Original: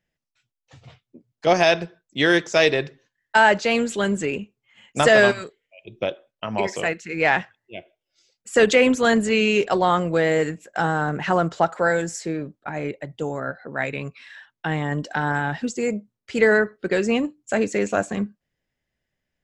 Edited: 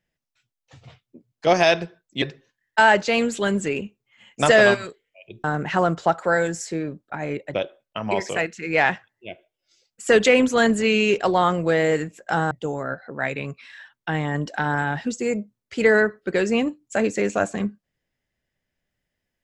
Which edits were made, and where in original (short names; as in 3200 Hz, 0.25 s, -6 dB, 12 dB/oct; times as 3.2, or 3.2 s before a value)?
2.22–2.79 cut
10.98–13.08 move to 6.01